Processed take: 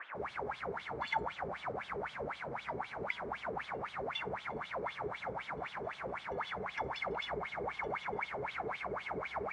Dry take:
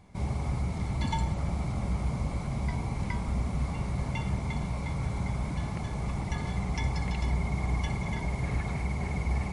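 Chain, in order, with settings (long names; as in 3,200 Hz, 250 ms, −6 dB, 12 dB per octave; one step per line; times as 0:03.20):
noise in a band 250–1,700 Hz −43 dBFS
LFO wah 3.9 Hz 400–3,500 Hz, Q 8.2
level +10.5 dB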